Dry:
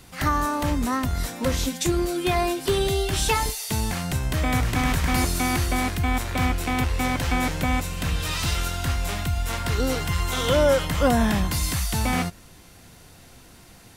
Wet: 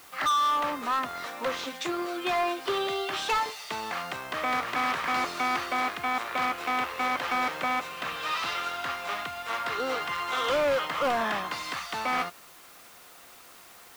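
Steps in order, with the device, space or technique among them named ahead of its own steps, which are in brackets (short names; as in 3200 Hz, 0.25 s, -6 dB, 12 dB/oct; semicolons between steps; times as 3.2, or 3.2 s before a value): drive-through speaker (BPF 540–3200 Hz; bell 1200 Hz +9 dB 0.22 oct; hard clip -22.5 dBFS, distortion -9 dB; white noise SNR 23 dB)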